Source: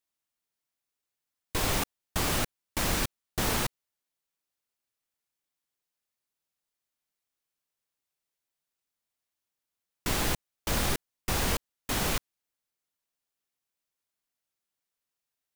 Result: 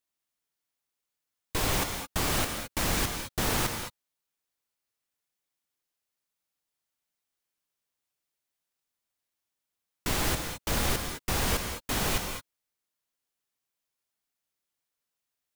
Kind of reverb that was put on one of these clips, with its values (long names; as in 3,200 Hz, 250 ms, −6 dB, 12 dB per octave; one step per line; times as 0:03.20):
reverb whose tail is shaped and stops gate 240 ms rising, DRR 5.5 dB